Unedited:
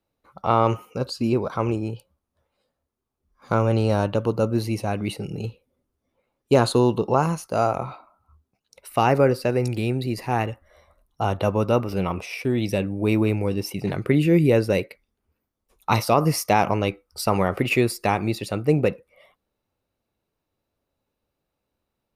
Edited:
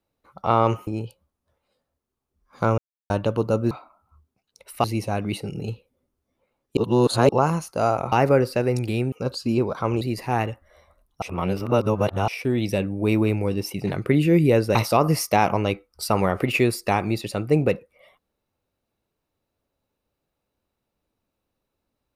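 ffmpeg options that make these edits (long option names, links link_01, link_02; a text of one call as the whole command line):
ffmpeg -i in.wav -filter_complex "[0:a]asplit=14[link_01][link_02][link_03][link_04][link_05][link_06][link_07][link_08][link_09][link_10][link_11][link_12][link_13][link_14];[link_01]atrim=end=0.872[link_15];[link_02]atrim=start=1.758:end=3.67,asetpts=PTS-STARTPTS,afade=type=out:start_time=1.908:duration=0.004:curve=hsin[link_16];[link_03]atrim=start=3.67:end=3.99,asetpts=PTS-STARTPTS,volume=0[link_17];[link_04]atrim=start=3.99:end=4.602,asetpts=PTS-STARTPTS,afade=type=in:duration=0.004:curve=hsin[link_18];[link_05]atrim=start=7.878:end=9.012[link_19];[link_06]atrim=start=4.598:end=6.532[link_20];[link_07]atrim=start=6.528:end=7.052,asetpts=PTS-STARTPTS,areverse[link_21];[link_08]atrim=start=7.048:end=7.882[link_22];[link_09]atrim=start=9.008:end=10.012[link_23];[link_10]atrim=start=0.868:end=1.762[link_24];[link_11]atrim=start=10.008:end=11.222[link_25];[link_12]atrim=start=11.218:end=12.282,asetpts=PTS-STARTPTS,areverse[link_26];[link_13]atrim=start=12.278:end=14.752[link_27];[link_14]atrim=start=15.918[link_28];[link_16][link_17][link_18]concat=n=3:v=0:a=1[link_29];[link_15][link_29]acrossfade=duration=0.004:curve1=hsin:curve2=hsin[link_30];[link_30][link_19]acrossfade=duration=0.004:curve1=hsin:curve2=hsin[link_31];[link_31][link_20]acrossfade=duration=0.004:curve1=hsin:curve2=hsin[link_32];[link_32][link_21]acrossfade=duration=0.004:curve1=hsin:curve2=hsin[link_33];[link_33][link_22]acrossfade=duration=0.004:curve1=hsin:curve2=hsin[link_34];[link_34][link_23]acrossfade=duration=0.004:curve1=hsin:curve2=hsin[link_35];[link_35][link_24]acrossfade=duration=0.004:curve1=hsin:curve2=hsin[link_36];[link_36][link_25]acrossfade=duration=0.004:curve1=hsin:curve2=hsin[link_37];[link_37][link_26]acrossfade=duration=0.004:curve1=hsin:curve2=hsin[link_38];[link_38][link_27]acrossfade=duration=0.004:curve1=hsin:curve2=hsin[link_39];[link_39][link_28]acrossfade=duration=0.004:curve1=hsin:curve2=hsin" out.wav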